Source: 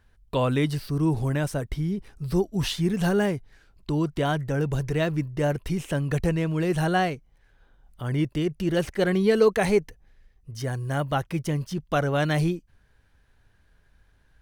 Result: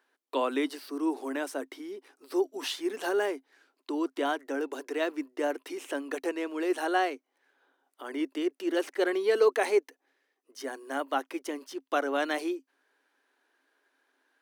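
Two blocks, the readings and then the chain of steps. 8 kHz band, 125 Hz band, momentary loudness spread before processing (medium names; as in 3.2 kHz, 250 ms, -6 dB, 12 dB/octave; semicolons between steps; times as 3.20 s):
-4.5 dB, under -40 dB, 7 LU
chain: rippled Chebyshev high-pass 260 Hz, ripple 3 dB; trim -1.5 dB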